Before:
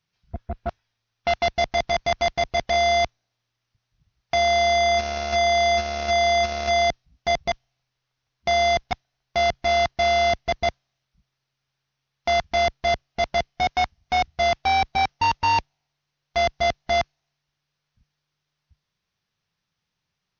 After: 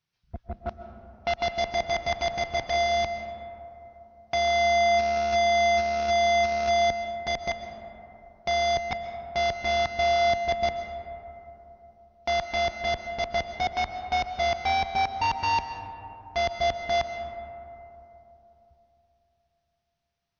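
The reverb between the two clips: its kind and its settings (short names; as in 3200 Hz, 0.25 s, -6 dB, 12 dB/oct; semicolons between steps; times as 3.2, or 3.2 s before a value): digital reverb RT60 3.4 s, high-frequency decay 0.3×, pre-delay 90 ms, DRR 7.5 dB; gain -5 dB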